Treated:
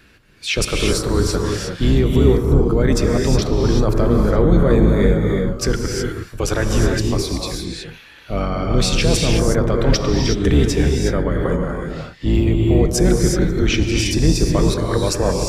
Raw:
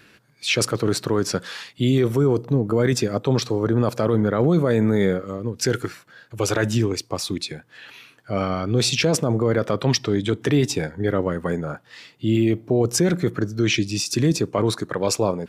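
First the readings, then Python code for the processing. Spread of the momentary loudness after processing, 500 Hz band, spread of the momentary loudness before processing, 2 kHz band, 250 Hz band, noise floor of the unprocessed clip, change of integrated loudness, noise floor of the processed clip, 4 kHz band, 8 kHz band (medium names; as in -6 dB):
9 LU, +3.0 dB, 9 LU, +2.5 dB, +3.5 dB, -55 dBFS, +4.0 dB, -43 dBFS, +2.5 dB, +2.5 dB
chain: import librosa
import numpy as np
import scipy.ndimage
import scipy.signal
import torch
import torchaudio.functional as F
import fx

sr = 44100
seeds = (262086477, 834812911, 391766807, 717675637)

y = fx.octave_divider(x, sr, octaves=2, level_db=3.0)
y = fx.rev_gated(y, sr, seeds[0], gate_ms=390, shape='rising', drr_db=1.0)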